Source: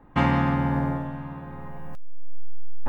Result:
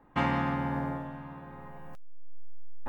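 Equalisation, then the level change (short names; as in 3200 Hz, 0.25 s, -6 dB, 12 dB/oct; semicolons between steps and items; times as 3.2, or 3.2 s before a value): low shelf 200 Hz -7.5 dB; -4.5 dB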